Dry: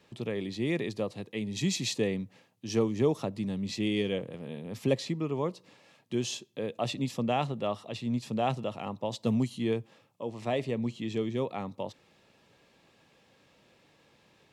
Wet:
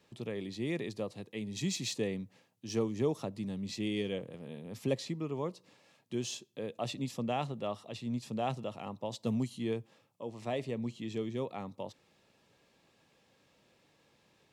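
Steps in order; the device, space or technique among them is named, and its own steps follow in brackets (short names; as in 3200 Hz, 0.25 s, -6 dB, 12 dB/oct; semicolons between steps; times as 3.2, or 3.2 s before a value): exciter from parts (in parallel at -7.5 dB: HPF 3800 Hz 12 dB/oct + soft clip -34 dBFS, distortion -12 dB); on the sum: gain -5 dB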